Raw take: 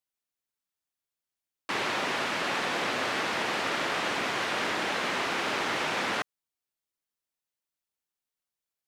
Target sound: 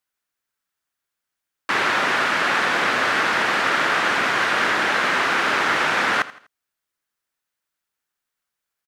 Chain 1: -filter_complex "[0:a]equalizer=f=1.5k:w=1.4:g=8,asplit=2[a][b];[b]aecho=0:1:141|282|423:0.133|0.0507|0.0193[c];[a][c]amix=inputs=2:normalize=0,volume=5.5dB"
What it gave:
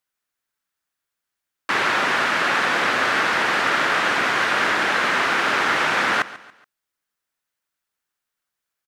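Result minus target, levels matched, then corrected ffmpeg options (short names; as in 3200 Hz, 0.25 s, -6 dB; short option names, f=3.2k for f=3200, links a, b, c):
echo 59 ms late
-filter_complex "[0:a]equalizer=f=1.5k:w=1.4:g=8,asplit=2[a][b];[b]aecho=0:1:82|164|246:0.133|0.0507|0.0193[c];[a][c]amix=inputs=2:normalize=0,volume=5.5dB"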